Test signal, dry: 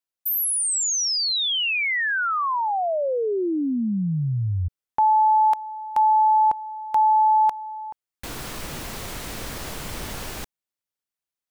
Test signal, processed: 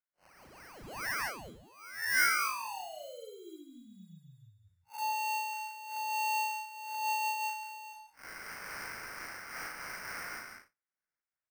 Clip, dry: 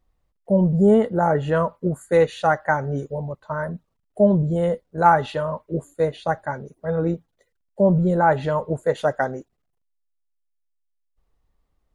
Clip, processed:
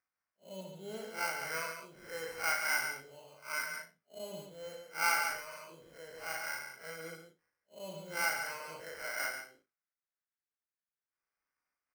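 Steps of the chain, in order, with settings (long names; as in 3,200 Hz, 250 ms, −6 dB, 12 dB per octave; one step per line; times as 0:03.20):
spectrum smeared in time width 113 ms
in parallel at −2.5 dB: downward compressor, threshold −29 dBFS
on the sum: pair of resonant band-passes 2,800 Hz, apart 1.8 octaves
sample-rate reduction 3,600 Hz, jitter 0%
double-tracking delay 37 ms −4.5 dB
single-tap delay 139 ms −5 dB
amplitude modulation by smooth noise, depth 60%
level +1.5 dB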